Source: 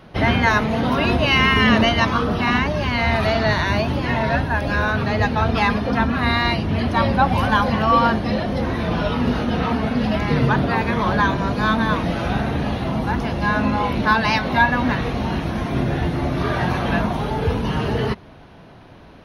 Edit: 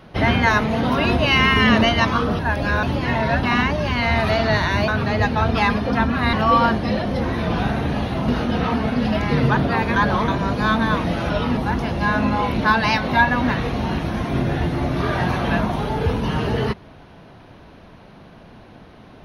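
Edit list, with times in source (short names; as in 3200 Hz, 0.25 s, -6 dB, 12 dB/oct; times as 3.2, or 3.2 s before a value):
2.39–3.84 swap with 4.44–4.88
6.33–7.74 cut
9–9.27 swap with 12.29–12.98
10.95–11.27 reverse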